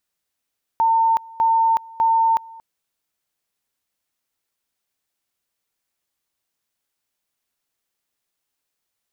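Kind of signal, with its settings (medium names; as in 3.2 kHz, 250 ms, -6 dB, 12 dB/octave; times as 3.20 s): two-level tone 905 Hz -13.5 dBFS, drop 23.5 dB, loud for 0.37 s, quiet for 0.23 s, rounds 3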